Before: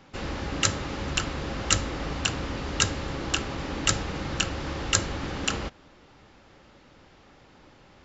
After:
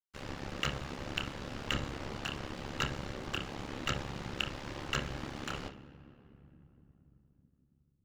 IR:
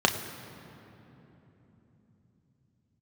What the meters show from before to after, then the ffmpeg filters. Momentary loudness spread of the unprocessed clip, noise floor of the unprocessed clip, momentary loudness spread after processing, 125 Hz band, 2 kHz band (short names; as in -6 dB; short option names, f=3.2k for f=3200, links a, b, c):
7 LU, -55 dBFS, 7 LU, -9.0 dB, -8.0 dB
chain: -filter_complex "[0:a]acrossover=split=3700[a][b];[b]acompressor=threshold=-41dB:ratio=4:attack=1:release=60[c];[a][c]amix=inputs=2:normalize=0,aeval=exprs='sgn(val(0))*max(abs(val(0))-0.0126,0)':c=same,asplit=2[d][e];[1:a]atrim=start_sample=2205,adelay=29[f];[e][f]afir=irnorm=-1:irlink=0,volume=-20dB[g];[d][g]amix=inputs=2:normalize=0,aeval=exprs='val(0)*sin(2*PI*35*n/s)':c=same,volume=-4dB"